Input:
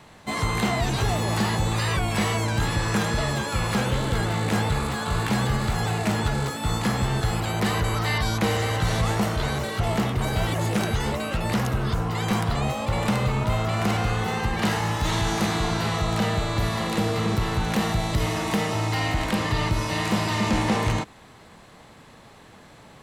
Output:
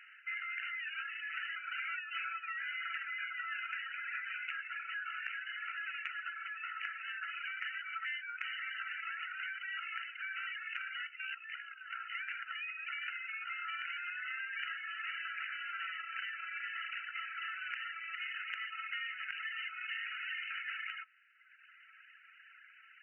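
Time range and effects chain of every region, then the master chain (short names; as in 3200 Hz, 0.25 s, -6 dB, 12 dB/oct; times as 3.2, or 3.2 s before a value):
1.56–4.53 comb 7.1 ms, depth 41% + frequency shift +350 Hz
11.07–11.93 tone controls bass +9 dB, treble +12 dB + compressor 12:1, threshold -20 dBFS + AM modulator 62 Hz, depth 30%
whole clip: reverb removal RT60 1.3 s; FFT band-pass 1300–3000 Hz; compressor 5:1, threshold -39 dBFS; gain +1 dB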